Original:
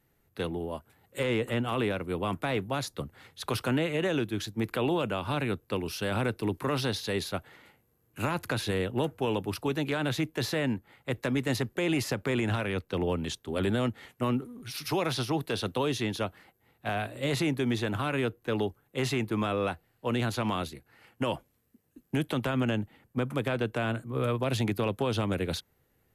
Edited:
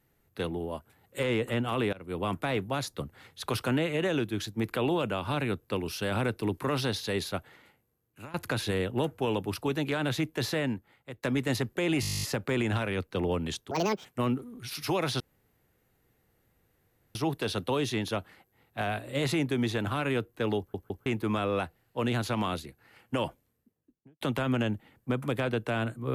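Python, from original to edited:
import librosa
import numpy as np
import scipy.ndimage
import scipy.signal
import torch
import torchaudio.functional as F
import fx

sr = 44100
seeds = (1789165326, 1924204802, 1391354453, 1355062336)

y = fx.studio_fade_out(x, sr, start_s=21.3, length_s=0.99)
y = fx.edit(y, sr, fx.fade_in_from(start_s=1.93, length_s=0.29, floor_db=-22.0),
    fx.fade_out_to(start_s=7.35, length_s=0.99, floor_db=-19.0),
    fx.fade_out_to(start_s=10.56, length_s=0.67, floor_db=-17.5),
    fx.stutter(start_s=12.01, slice_s=0.02, count=12),
    fx.speed_span(start_s=13.49, length_s=0.59, speed=1.73),
    fx.insert_room_tone(at_s=15.23, length_s=1.95),
    fx.stutter_over(start_s=18.66, slice_s=0.16, count=3), tone=tone)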